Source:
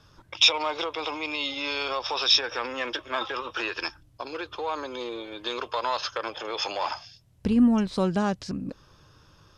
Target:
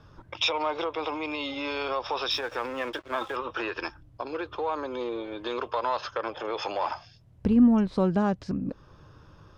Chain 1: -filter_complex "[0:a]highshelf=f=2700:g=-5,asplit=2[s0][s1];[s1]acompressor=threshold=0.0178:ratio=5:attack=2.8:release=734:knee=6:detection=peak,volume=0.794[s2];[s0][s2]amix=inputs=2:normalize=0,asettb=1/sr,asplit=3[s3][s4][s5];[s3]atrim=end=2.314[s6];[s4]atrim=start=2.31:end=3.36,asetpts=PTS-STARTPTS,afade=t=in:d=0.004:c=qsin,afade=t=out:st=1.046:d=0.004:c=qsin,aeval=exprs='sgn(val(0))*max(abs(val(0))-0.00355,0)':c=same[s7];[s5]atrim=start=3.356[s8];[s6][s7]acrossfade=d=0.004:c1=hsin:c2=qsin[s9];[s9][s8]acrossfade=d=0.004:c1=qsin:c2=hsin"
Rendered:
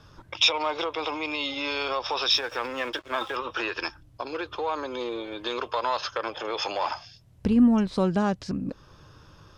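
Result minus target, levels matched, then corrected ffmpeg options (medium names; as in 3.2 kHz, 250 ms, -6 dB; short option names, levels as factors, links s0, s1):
4 kHz band +4.5 dB
-filter_complex "[0:a]highshelf=f=2700:g=-15.5,asplit=2[s0][s1];[s1]acompressor=threshold=0.0178:ratio=5:attack=2.8:release=734:knee=6:detection=peak,volume=0.794[s2];[s0][s2]amix=inputs=2:normalize=0,asettb=1/sr,asplit=3[s3][s4][s5];[s3]atrim=end=2.314[s6];[s4]atrim=start=2.31:end=3.36,asetpts=PTS-STARTPTS,afade=t=in:d=0.004:c=qsin,afade=t=out:st=1.046:d=0.004:c=qsin,aeval=exprs='sgn(val(0))*max(abs(val(0))-0.00355,0)':c=same[s7];[s5]atrim=start=3.356[s8];[s6][s7]acrossfade=d=0.004:c1=hsin:c2=qsin[s9];[s9][s8]acrossfade=d=0.004:c1=qsin:c2=hsin"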